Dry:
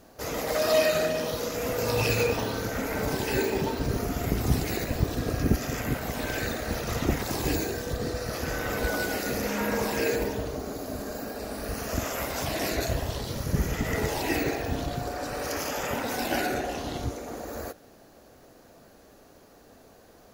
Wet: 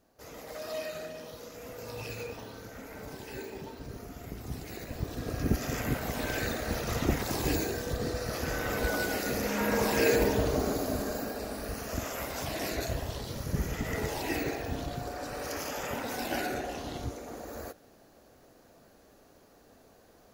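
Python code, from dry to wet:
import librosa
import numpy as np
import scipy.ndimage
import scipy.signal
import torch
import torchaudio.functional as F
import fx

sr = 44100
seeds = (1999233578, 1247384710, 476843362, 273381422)

y = fx.gain(x, sr, db=fx.line((4.49, -14.5), (5.72, -2.0), (9.49, -2.0), (10.62, 5.5), (11.83, -5.0)))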